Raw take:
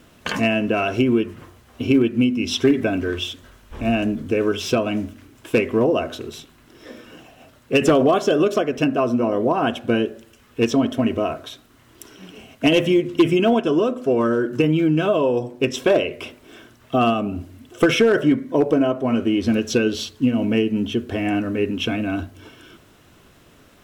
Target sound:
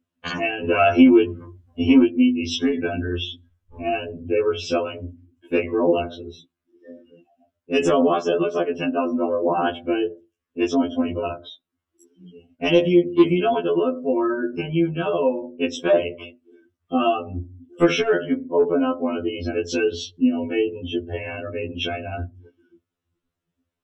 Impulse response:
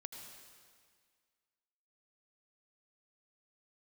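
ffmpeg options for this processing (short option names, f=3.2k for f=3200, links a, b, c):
-filter_complex "[0:a]asettb=1/sr,asplit=3[a][b][c];[a]atrim=end=0.644[d];[b]atrim=start=0.64:end=2.04,asetpts=PTS-STARTPTS,afade=t=in:d=0.004:c=qsin,afade=t=out:st=1.396:d=0.004:c=qsin,acontrast=48[e];[c]atrim=start=2.036[f];[d][e]acrossfade=d=0.004:c1=hsin:c2=qsin[g];[g][f]acrossfade=d=0.004:c1=qsin:c2=hsin,afftdn=nr=31:nf=-34,afftfilt=real='re*2*eq(mod(b,4),0)':imag='im*2*eq(mod(b,4),0)':win_size=2048:overlap=0.75"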